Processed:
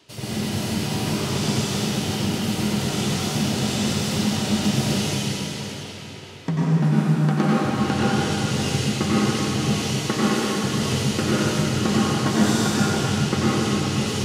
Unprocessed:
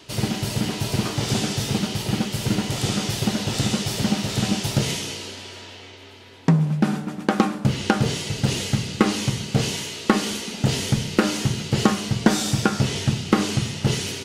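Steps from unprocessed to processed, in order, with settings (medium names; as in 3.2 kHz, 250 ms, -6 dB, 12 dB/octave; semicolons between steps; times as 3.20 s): high-pass 71 Hz; plate-style reverb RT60 3.6 s, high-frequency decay 0.8×, pre-delay 80 ms, DRR -9 dB; trim -8.5 dB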